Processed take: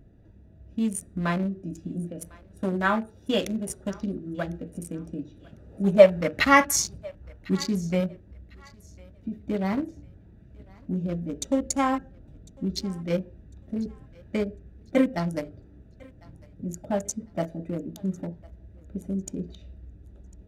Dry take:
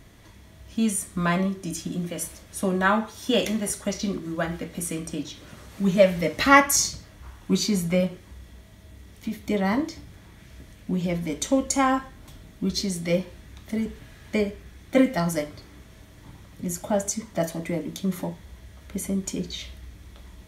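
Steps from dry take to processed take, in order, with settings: local Wiener filter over 41 samples; 5.68–6.44 s: peaking EQ 450 Hz -> 1.9 kHz +9 dB 1.6 oct; on a send: thinning echo 1051 ms, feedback 28%, high-pass 550 Hz, level -23 dB; on the sum: trim -2 dB

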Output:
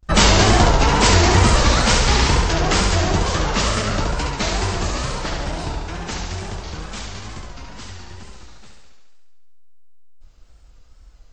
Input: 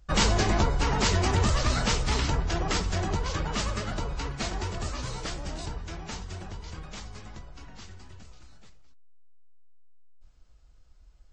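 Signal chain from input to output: 5.05–5.94 s: treble shelf 4.7 kHz -9 dB; thinning echo 70 ms, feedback 71%, high-pass 170 Hz, level -3.5 dB; vibrato 2.2 Hz 87 cents; gate with hold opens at -50 dBFS; trim +9 dB

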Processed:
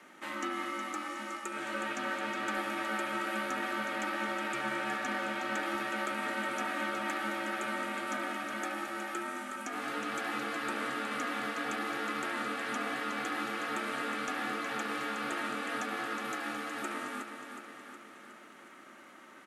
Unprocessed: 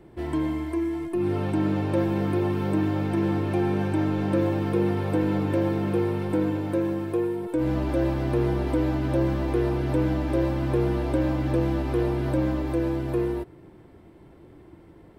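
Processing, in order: steep high-pass 910 Hz 96 dB/octave; in parallel at +3 dB: compression 12:1, threshold -53 dBFS, peak gain reduction 17.5 dB; on the sum: tape speed -22%; overload inside the chain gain 30.5 dB; ring modulator 480 Hz; on a send: feedback delay 366 ms, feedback 59%, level -8 dB; on the sum: trim +6 dB

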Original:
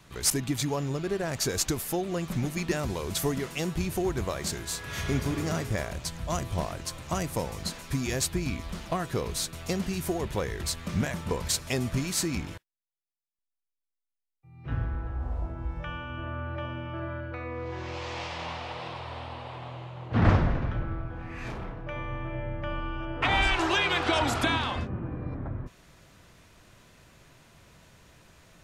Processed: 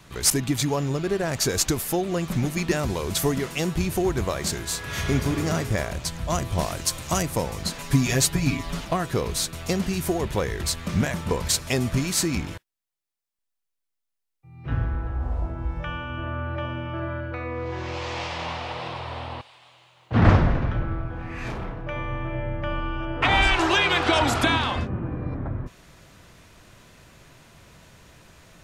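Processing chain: 6.59–7.22 s: treble shelf 4 kHz +9 dB; 7.78–8.85 s: comb 7.1 ms, depth 93%; 19.41–20.11 s: pre-emphasis filter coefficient 0.97; trim +5 dB

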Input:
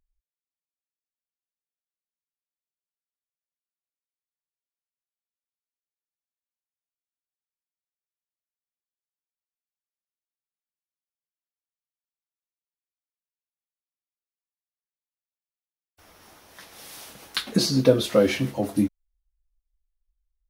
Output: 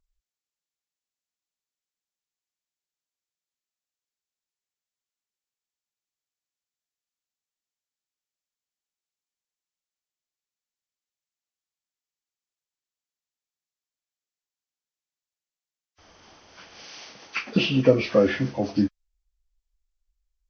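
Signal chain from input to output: knee-point frequency compression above 1 kHz 1.5:1; 16.84–17.56 s: high-pass 210 Hz 6 dB/octave

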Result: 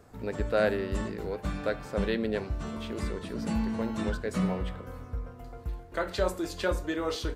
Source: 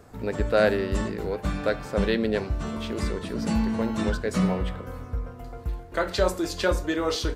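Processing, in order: dynamic bell 5.4 kHz, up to -4 dB, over -46 dBFS, Q 1.7; trim -5 dB

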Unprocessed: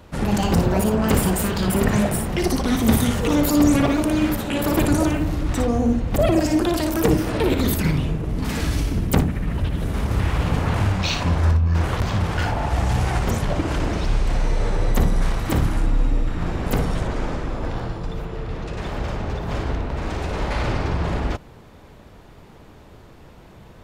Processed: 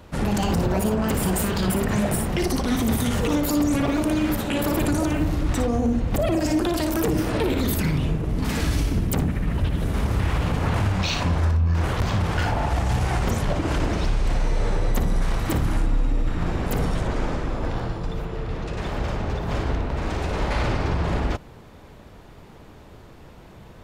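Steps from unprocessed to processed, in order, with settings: peak limiter -13.5 dBFS, peak gain reduction 8 dB

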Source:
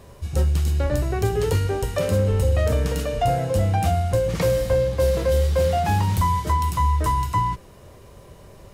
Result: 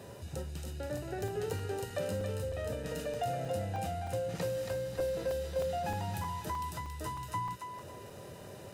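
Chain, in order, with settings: compression 2.5:1, threshold -38 dBFS, peak gain reduction 14.5 dB; high-pass 76 Hz 24 dB/octave; comb of notches 1.1 kHz; thinning echo 277 ms, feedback 40%, high-pass 960 Hz, level -4 dB; crackling interface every 0.31 s, samples 128, zero, from 0.35 s

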